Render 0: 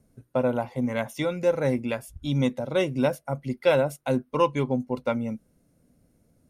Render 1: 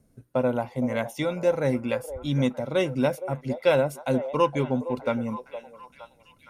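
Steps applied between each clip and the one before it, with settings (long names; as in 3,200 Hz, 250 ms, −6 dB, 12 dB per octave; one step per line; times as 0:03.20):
echo through a band-pass that steps 465 ms, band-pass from 590 Hz, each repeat 0.7 octaves, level −9.5 dB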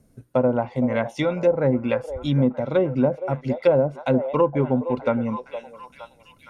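treble cut that deepens with the level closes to 680 Hz, closed at −18 dBFS
level +4.5 dB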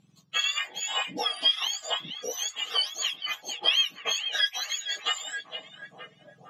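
frequency axis turned over on the octave scale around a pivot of 1,300 Hz
low-pass filter 4,700 Hz 12 dB per octave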